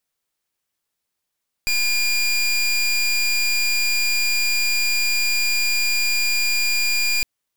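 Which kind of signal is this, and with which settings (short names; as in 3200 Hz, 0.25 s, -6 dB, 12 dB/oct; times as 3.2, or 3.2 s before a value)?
pulse 2410 Hz, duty 23% -19.5 dBFS 5.56 s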